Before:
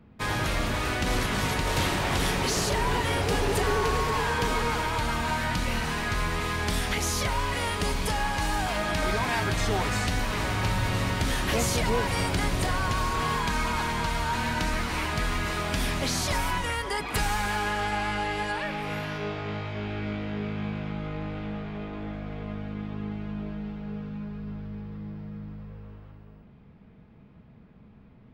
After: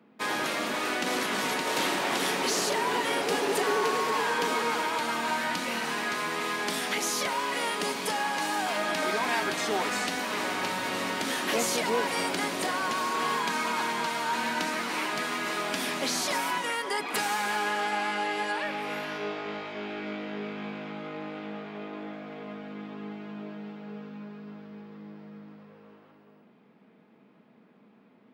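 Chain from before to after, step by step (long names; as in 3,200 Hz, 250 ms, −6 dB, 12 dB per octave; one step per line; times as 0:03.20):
high-pass filter 230 Hz 24 dB per octave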